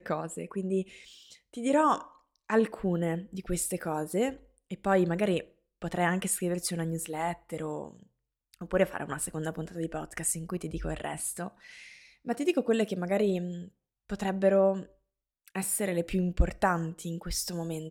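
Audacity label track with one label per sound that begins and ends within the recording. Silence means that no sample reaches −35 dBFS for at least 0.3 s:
1.570000	2.010000	sound
2.500000	4.330000	sound
4.710000	5.410000	sound
5.820000	7.890000	sound
8.610000	11.480000	sound
12.270000	13.630000	sound
14.100000	14.830000	sound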